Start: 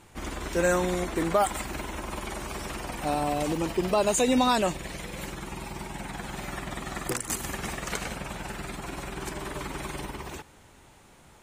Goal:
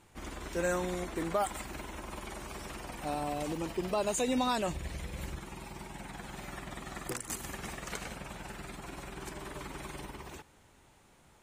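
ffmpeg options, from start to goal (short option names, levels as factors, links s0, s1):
-filter_complex "[0:a]asettb=1/sr,asplit=3[s0][s1][s2];[s0]atrim=end=4.684[s3];[s1]atrim=start=4.68:end=5.39,asetpts=PTS-STARTPTS,afade=t=in:d=0.004:c=qsin,afade=t=out:st=0.706:d=0.004:c=qsin,equalizer=f=69:w=1:g=14[s4];[s2]atrim=start=5.386[s5];[s3][s4]acrossfade=d=0.004:c1=hsin:c2=qsin[s6];[s6][s5]acrossfade=d=0.004:c1=qsin:c2=hsin,volume=0.422"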